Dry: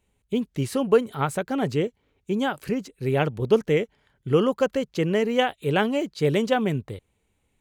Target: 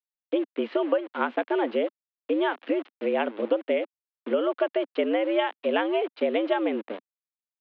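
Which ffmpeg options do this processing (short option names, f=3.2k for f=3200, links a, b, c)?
-af "aeval=exprs='val(0)*gte(abs(val(0)),0.0158)':c=same,acompressor=threshold=-23dB:ratio=10,highpass=f=160:t=q:w=0.5412,highpass=f=160:t=q:w=1.307,lowpass=f=3.2k:t=q:w=0.5176,lowpass=f=3.2k:t=q:w=0.7071,lowpass=f=3.2k:t=q:w=1.932,afreqshift=100,volume=3dB"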